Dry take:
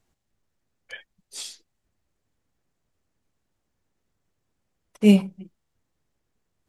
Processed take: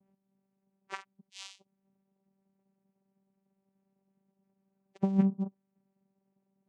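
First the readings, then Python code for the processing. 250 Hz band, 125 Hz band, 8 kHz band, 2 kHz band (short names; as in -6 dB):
-9.5 dB, -6.5 dB, under -10 dB, -11.0 dB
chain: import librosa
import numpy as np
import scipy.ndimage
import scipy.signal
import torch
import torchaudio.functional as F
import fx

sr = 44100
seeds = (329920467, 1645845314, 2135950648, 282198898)

y = fx.spec_topn(x, sr, count=32)
y = fx.vocoder(y, sr, bands=4, carrier='saw', carrier_hz=194.0)
y = fx.spec_repair(y, sr, seeds[0], start_s=4.64, length_s=0.3, low_hz=800.0, high_hz=1600.0, source='before')
y = fx.over_compress(y, sr, threshold_db=-26.0, ratio=-1.0)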